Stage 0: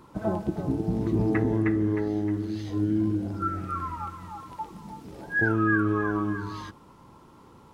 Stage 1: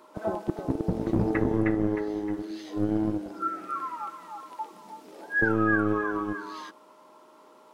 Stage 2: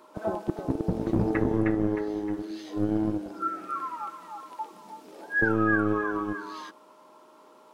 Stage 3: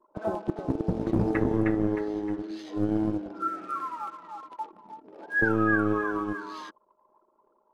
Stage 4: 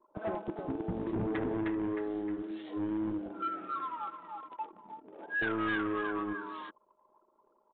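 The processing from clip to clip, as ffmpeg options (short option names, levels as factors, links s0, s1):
-filter_complex "[0:a]acrossover=split=280|850[s0][s1][s2];[s0]acrusher=bits=3:mix=0:aa=0.5[s3];[s3][s1][s2]amix=inputs=3:normalize=0,aeval=exprs='val(0)+0.00126*sin(2*PI*620*n/s)':c=same"
-af "bandreject=f=2000:w=28"
-af "anlmdn=0.0251"
-af "aresample=11025,asoftclip=type=tanh:threshold=0.0531,aresample=44100,aresample=8000,aresample=44100,volume=0.75"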